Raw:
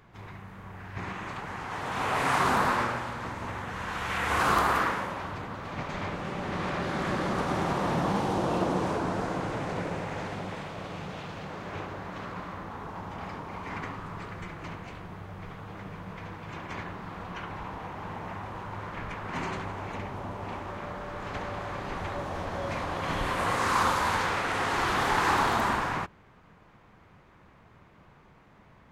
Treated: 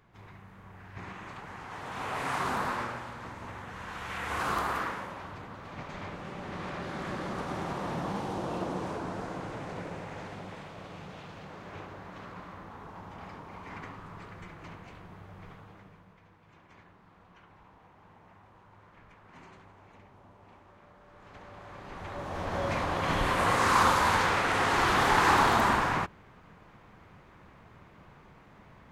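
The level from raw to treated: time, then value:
0:15.52 −6.5 dB
0:16.22 −19 dB
0:20.97 −19 dB
0:21.90 −9 dB
0:22.57 +2 dB

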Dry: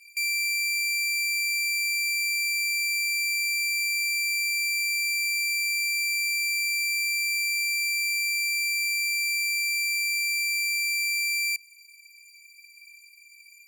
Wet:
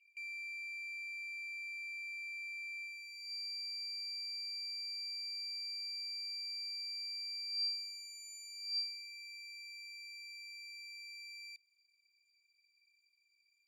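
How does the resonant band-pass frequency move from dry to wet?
resonant band-pass, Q 18
0:02.83 2,800 Hz
0:03.32 4,400 Hz
0:07.48 4,400 Hz
0:08.34 6,300 Hz
0:09.13 3,700 Hz

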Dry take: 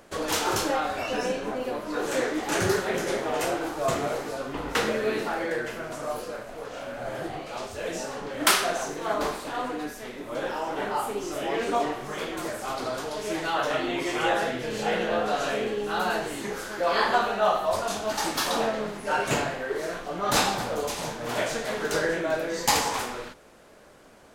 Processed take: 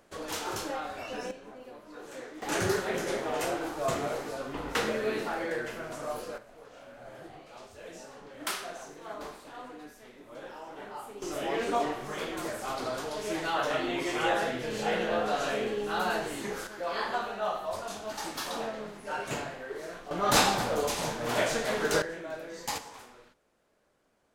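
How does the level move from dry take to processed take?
−9 dB
from 0:01.31 −16.5 dB
from 0:02.42 −4 dB
from 0:06.38 −13.5 dB
from 0:11.22 −3 dB
from 0:16.67 −9 dB
from 0:20.11 0 dB
from 0:22.02 −12 dB
from 0:22.78 −19 dB

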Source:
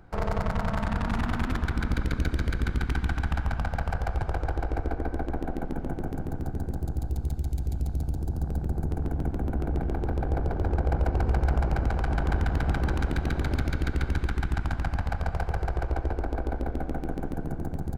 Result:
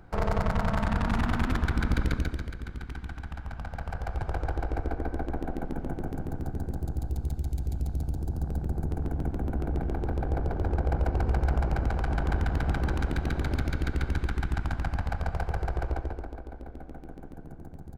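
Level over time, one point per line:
0:02.10 +1 dB
0:02.55 −10.5 dB
0:03.38 −10.5 dB
0:04.38 −1.5 dB
0:15.90 −1.5 dB
0:16.44 −12 dB

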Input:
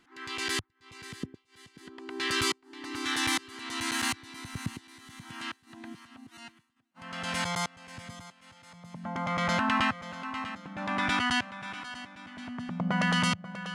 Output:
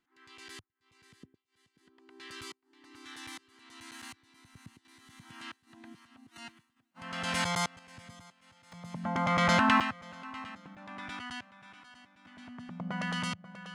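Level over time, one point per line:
−17 dB
from 0:04.85 −7 dB
from 0:06.36 +0.5 dB
from 0:07.79 −6.5 dB
from 0:08.72 +3 dB
from 0:09.80 −6.5 dB
from 0:10.75 −14 dB
from 0:12.25 −8 dB

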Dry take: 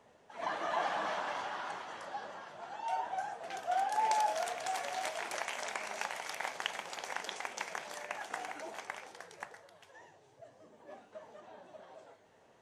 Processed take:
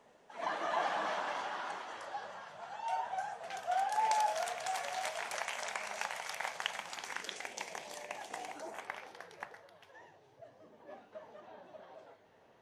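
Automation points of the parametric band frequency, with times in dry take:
parametric band −11 dB 0.67 octaves
0:01.67 96 Hz
0:02.32 320 Hz
0:06.70 320 Hz
0:07.61 1,400 Hz
0:08.50 1,400 Hz
0:08.90 7,800 Hz

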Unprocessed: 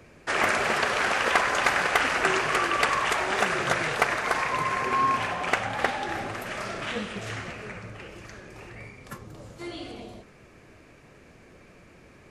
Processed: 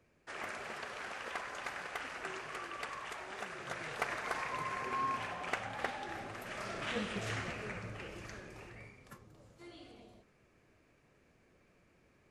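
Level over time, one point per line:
0:03.57 −19 dB
0:04.12 −12 dB
0:06.28 −12 dB
0:07.15 −4 dB
0:08.35 −4 dB
0:09.33 −16 dB

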